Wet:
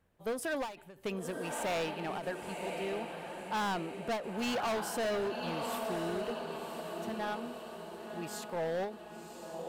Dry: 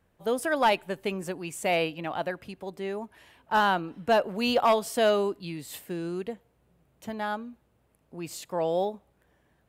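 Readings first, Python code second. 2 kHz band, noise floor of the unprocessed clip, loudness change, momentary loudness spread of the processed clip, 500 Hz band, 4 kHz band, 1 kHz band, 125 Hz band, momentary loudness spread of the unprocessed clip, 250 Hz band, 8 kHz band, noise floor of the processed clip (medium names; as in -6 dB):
-7.5 dB, -69 dBFS, -8.5 dB, 10 LU, -7.5 dB, -7.0 dB, -9.0 dB, -5.0 dB, 16 LU, -5.5 dB, -3.5 dB, -52 dBFS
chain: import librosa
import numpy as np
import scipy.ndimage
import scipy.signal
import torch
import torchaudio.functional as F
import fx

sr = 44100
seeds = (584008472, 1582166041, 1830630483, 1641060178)

y = fx.echo_diffused(x, sr, ms=1066, feedback_pct=54, wet_db=-8.5)
y = np.clip(y, -10.0 ** (-26.0 / 20.0), 10.0 ** (-26.0 / 20.0))
y = fx.end_taper(y, sr, db_per_s=130.0)
y = F.gain(torch.from_numpy(y), -4.5).numpy()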